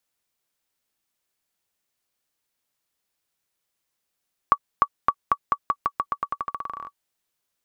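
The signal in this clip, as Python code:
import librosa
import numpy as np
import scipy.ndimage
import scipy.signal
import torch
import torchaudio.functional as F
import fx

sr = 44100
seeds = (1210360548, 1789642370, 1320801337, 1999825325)

y = fx.bouncing_ball(sr, first_gap_s=0.3, ratio=0.88, hz=1140.0, decay_ms=59.0, level_db=-4.5)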